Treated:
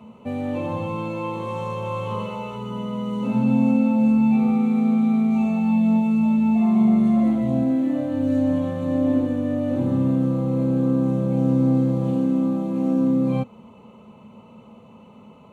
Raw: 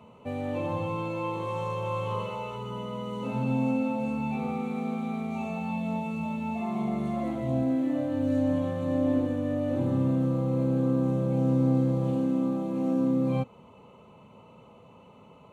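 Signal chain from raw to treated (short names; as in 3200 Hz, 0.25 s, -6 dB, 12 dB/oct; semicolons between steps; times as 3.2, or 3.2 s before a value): bell 220 Hz +12 dB 0.27 oct; gain +3 dB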